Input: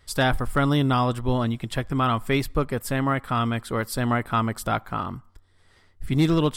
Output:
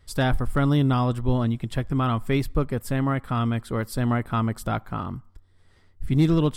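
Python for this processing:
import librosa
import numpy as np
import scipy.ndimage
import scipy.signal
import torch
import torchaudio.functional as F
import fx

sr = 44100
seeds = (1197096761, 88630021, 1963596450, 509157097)

y = fx.low_shelf(x, sr, hz=400.0, db=8.0)
y = y * librosa.db_to_amplitude(-5.0)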